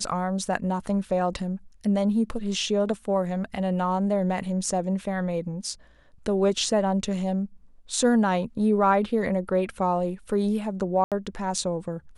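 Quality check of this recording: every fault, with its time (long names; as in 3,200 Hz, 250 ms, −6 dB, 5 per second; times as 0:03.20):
0:11.04–0:11.12: drop-out 77 ms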